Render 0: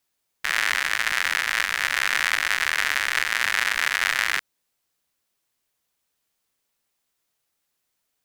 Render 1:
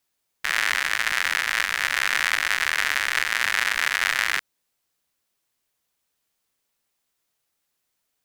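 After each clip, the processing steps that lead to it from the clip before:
no processing that can be heard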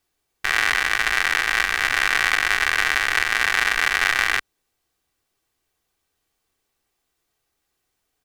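spectral tilt −1.5 dB per octave
comb filter 2.6 ms, depth 39%
level +4 dB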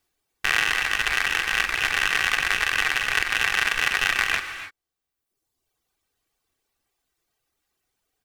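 loose part that buzzes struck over −40 dBFS, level −11 dBFS
reverb reduction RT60 1.2 s
reverb whose tail is shaped and stops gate 320 ms rising, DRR 9.5 dB

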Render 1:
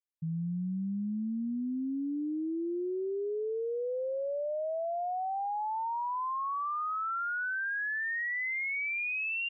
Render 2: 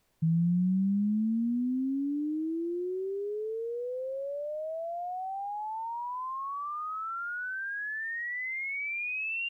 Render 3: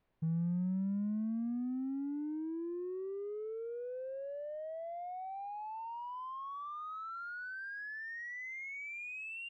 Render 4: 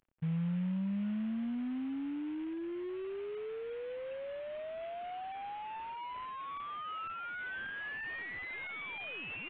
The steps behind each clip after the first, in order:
bass and treble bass +13 dB, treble +14 dB; background noise pink −70 dBFS; level −2.5 dB
high-frequency loss of the air 340 metres; in parallel at −5 dB: soft clipping −37.5 dBFS, distortion −6 dB; on the sum: level −8.5 dB
variable-slope delta modulation 16 kbit/s; level +1 dB

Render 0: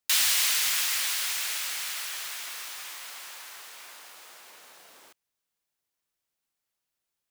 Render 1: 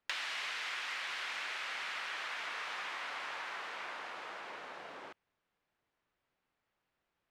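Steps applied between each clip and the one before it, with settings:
low-pass filter 2,100 Hz 12 dB per octave
downward compressor 8 to 1, threshold −46 dBFS, peak gain reduction 15 dB
level +9 dB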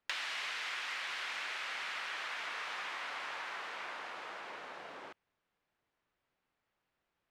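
no processing that can be heard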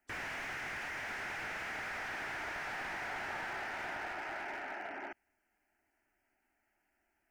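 phaser with its sweep stopped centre 740 Hz, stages 8
gate on every frequency bin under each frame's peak −30 dB strong
slew-rate limiting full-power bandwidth 7.2 Hz
level +8 dB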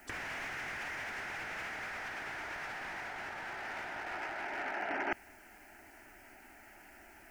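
compressor whose output falls as the input rises −49 dBFS, ratio −0.5
level +12 dB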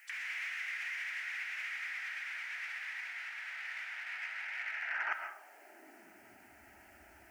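high-pass filter sweep 2,100 Hz → 67 Hz, 0:04.80–0:06.65
convolution reverb RT60 0.70 s, pre-delay 85 ms, DRR 5 dB
level −4 dB

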